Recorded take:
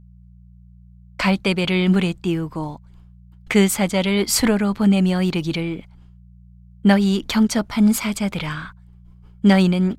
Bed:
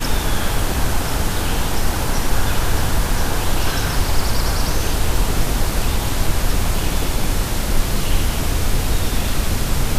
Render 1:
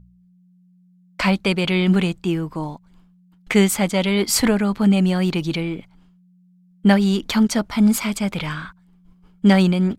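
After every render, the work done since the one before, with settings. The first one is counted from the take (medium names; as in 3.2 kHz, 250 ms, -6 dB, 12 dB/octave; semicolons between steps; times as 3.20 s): de-hum 60 Hz, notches 2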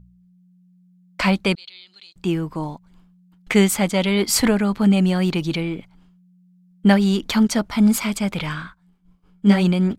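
1.55–2.16 s: band-pass filter 4.2 kHz, Q 11; 8.62–9.64 s: detune thickener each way 44 cents -> 25 cents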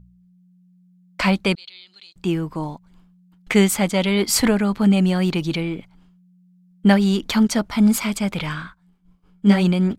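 no audible change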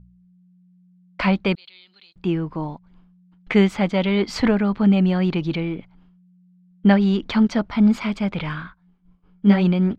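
distance through air 220 m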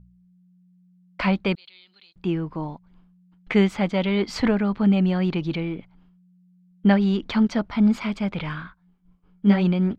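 trim -2.5 dB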